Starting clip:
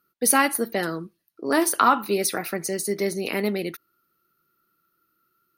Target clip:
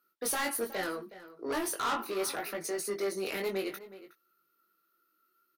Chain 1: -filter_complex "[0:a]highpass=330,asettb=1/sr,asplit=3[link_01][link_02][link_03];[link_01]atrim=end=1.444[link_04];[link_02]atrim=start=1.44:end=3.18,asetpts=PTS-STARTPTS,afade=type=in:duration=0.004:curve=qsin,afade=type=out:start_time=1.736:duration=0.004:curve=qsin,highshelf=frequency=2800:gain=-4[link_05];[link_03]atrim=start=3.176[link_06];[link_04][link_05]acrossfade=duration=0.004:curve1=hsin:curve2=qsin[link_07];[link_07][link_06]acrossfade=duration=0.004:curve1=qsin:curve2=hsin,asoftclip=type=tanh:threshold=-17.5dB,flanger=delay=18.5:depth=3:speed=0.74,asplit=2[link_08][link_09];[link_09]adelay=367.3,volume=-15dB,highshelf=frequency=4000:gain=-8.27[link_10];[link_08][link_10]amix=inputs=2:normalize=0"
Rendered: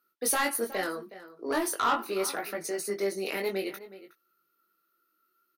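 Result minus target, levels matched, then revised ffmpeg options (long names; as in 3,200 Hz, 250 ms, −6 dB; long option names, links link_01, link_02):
soft clipping: distortion −5 dB
-filter_complex "[0:a]highpass=330,asettb=1/sr,asplit=3[link_01][link_02][link_03];[link_01]atrim=end=1.444[link_04];[link_02]atrim=start=1.44:end=3.18,asetpts=PTS-STARTPTS,afade=type=in:duration=0.004:curve=qsin,afade=type=out:start_time=1.736:duration=0.004:curve=qsin,highshelf=frequency=2800:gain=-4[link_05];[link_03]atrim=start=3.176[link_06];[link_04][link_05]acrossfade=duration=0.004:curve1=hsin:curve2=qsin[link_07];[link_07][link_06]acrossfade=duration=0.004:curve1=qsin:curve2=hsin,asoftclip=type=tanh:threshold=-25.5dB,flanger=delay=18.5:depth=3:speed=0.74,asplit=2[link_08][link_09];[link_09]adelay=367.3,volume=-15dB,highshelf=frequency=4000:gain=-8.27[link_10];[link_08][link_10]amix=inputs=2:normalize=0"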